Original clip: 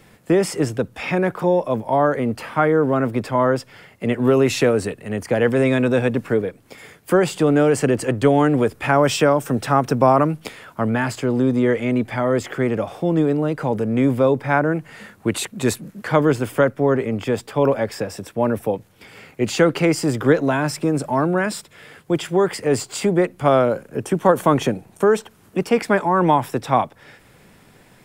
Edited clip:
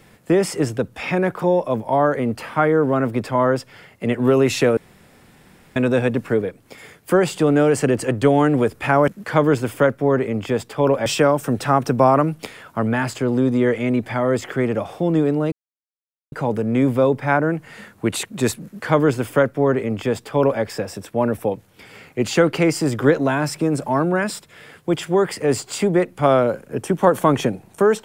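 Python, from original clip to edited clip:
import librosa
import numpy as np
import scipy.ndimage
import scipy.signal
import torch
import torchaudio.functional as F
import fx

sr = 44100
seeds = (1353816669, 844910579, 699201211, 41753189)

y = fx.edit(x, sr, fx.room_tone_fill(start_s=4.77, length_s=0.99),
    fx.insert_silence(at_s=13.54, length_s=0.8),
    fx.duplicate(start_s=15.86, length_s=1.98, to_s=9.08), tone=tone)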